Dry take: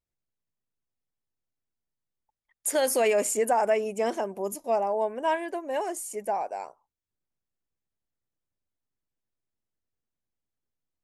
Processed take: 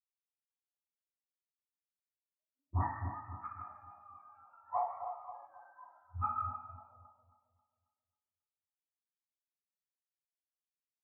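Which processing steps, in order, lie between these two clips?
spectrum inverted on a logarithmic axis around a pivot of 730 Hz; gate with hold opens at -45 dBFS; de-hum 241.1 Hz, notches 2; in parallel at 0 dB: compression, threshold -33 dBFS, peak gain reduction 12.5 dB; on the sum: auto-wah 470–1400 Hz, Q 2.5, up, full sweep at -24.5 dBFS; inverted gate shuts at -33 dBFS, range -36 dB; distance through air 370 m; two-band feedback delay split 1.1 kHz, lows 270 ms, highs 153 ms, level -5 dB; reverberation RT60 1.1 s, pre-delay 76 ms; spectral contrast expander 1.5:1; trim +16 dB

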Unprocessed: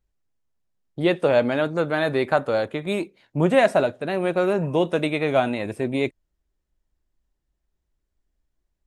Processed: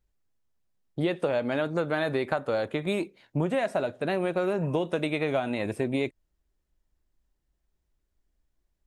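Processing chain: compression 10:1, threshold -23 dBFS, peak gain reduction 11.5 dB

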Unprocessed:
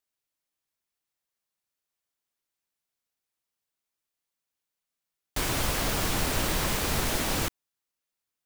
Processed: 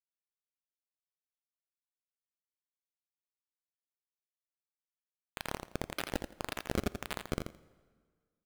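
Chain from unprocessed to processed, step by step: gate with hold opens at -19 dBFS; rippled EQ curve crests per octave 1.5, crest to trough 10 dB; peak limiter -24.5 dBFS, peak gain reduction 9.5 dB; harmony voices -12 st -3 dB, +7 st -9 dB; reverse; compression 6:1, threshold -43 dBFS, peak gain reduction 14 dB; reverse; high-pass sweep 1.7 kHz -> 210 Hz, 5.63–6.16 s; decimation with a swept rate 28×, swing 160% 1.8 Hz; hum 60 Hz, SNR 31 dB; word length cut 6-bit, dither none; on a send: feedback delay 84 ms, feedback 16%, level -7 dB; on the sum: plate-style reverb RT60 1.7 s, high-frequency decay 0.8×, DRR 19 dB; trim +10 dB

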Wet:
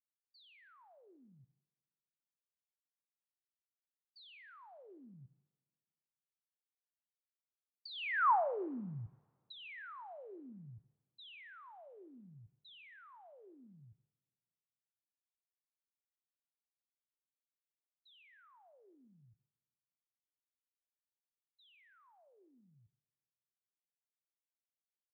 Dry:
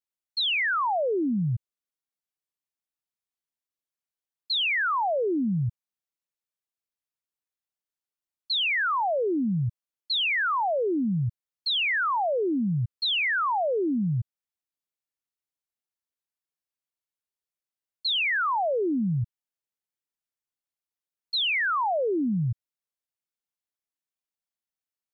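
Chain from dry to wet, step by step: Doppler pass-by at 8.30 s, 26 m/s, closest 1.3 m; in parallel at +2 dB: compression, threshold -51 dBFS, peak gain reduction 23 dB; on the sum: low-pass that closes with the level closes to 2.7 kHz, closed at -46.5 dBFS; two-slope reverb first 0.63 s, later 2 s, from -22 dB, DRR 12 dB; trim -1.5 dB

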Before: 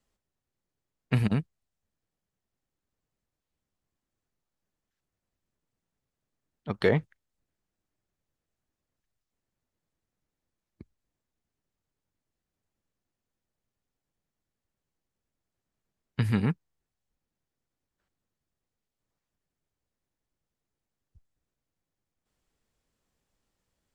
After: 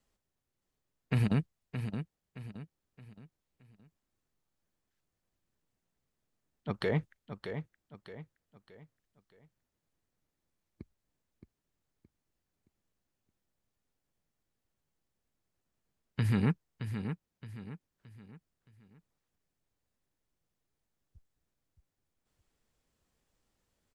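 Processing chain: peak limiter -19.5 dBFS, peak gain reduction 10 dB; on a send: feedback delay 620 ms, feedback 38%, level -8.5 dB

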